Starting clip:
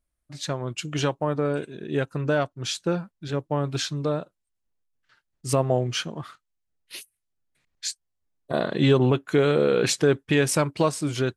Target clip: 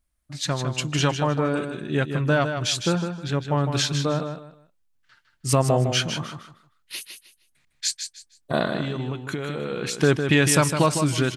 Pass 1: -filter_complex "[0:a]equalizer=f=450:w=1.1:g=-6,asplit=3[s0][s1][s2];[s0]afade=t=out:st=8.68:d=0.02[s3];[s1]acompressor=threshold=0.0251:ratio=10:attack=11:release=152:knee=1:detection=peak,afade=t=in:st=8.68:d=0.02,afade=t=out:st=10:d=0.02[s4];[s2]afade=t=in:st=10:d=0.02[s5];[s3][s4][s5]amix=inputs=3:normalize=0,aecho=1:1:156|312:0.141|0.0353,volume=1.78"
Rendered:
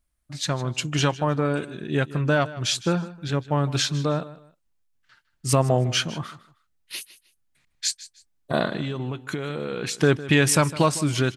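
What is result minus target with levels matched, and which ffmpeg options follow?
echo-to-direct -9.5 dB
-filter_complex "[0:a]equalizer=f=450:w=1.1:g=-6,asplit=3[s0][s1][s2];[s0]afade=t=out:st=8.68:d=0.02[s3];[s1]acompressor=threshold=0.0251:ratio=10:attack=11:release=152:knee=1:detection=peak,afade=t=in:st=8.68:d=0.02,afade=t=out:st=10:d=0.02[s4];[s2]afade=t=in:st=10:d=0.02[s5];[s3][s4][s5]amix=inputs=3:normalize=0,aecho=1:1:156|312|468:0.422|0.105|0.0264,volume=1.78"

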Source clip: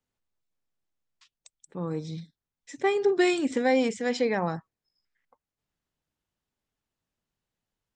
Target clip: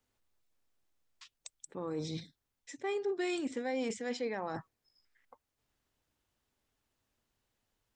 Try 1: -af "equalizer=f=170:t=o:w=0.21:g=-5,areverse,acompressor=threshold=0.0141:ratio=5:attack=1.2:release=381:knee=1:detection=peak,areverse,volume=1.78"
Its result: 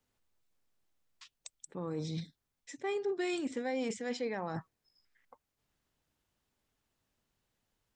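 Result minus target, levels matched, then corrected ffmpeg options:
125 Hz band +4.0 dB
-af "equalizer=f=170:t=o:w=0.21:g=-15,areverse,acompressor=threshold=0.0141:ratio=5:attack=1.2:release=381:knee=1:detection=peak,areverse,volume=1.78"

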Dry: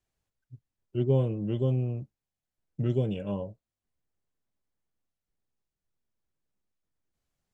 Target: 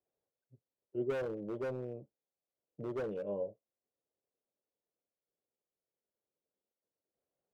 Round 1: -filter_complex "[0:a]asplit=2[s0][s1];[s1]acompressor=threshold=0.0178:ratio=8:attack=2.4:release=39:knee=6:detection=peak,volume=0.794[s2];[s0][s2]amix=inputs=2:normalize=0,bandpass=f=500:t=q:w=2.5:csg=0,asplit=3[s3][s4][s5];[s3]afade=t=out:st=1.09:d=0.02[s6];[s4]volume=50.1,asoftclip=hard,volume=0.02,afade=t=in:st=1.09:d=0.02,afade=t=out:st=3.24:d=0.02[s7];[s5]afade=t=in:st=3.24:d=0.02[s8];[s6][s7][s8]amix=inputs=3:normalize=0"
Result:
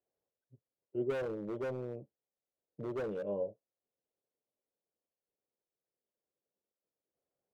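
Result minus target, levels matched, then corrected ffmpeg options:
compression: peak gain reduction -7 dB
-filter_complex "[0:a]asplit=2[s0][s1];[s1]acompressor=threshold=0.00708:ratio=8:attack=2.4:release=39:knee=6:detection=peak,volume=0.794[s2];[s0][s2]amix=inputs=2:normalize=0,bandpass=f=500:t=q:w=2.5:csg=0,asplit=3[s3][s4][s5];[s3]afade=t=out:st=1.09:d=0.02[s6];[s4]volume=50.1,asoftclip=hard,volume=0.02,afade=t=in:st=1.09:d=0.02,afade=t=out:st=3.24:d=0.02[s7];[s5]afade=t=in:st=3.24:d=0.02[s8];[s6][s7][s8]amix=inputs=3:normalize=0"

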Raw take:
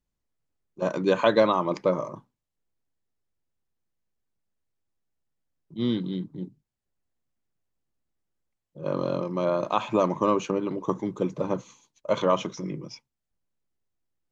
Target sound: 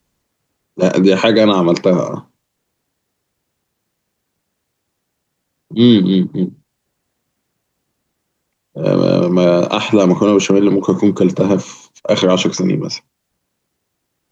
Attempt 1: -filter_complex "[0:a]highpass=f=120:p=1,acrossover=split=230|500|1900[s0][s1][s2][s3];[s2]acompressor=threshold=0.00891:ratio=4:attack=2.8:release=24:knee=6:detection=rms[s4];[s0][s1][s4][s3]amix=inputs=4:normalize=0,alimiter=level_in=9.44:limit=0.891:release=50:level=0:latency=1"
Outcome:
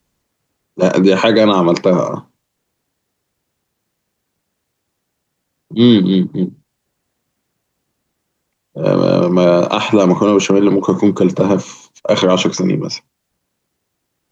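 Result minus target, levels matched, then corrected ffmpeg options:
compression: peak gain reduction -6.5 dB
-filter_complex "[0:a]highpass=f=120:p=1,acrossover=split=230|500|1900[s0][s1][s2][s3];[s2]acompressor=threshold=0.00335:ratio=4:attack=2.8:release=24:knee=6:detection=rms[s4];[s0][s1][s4][s3]amix=inputs=4:normalize=0,alimiter=level_in=9.44:limit=0.891:release=50:level=0:latency=1"

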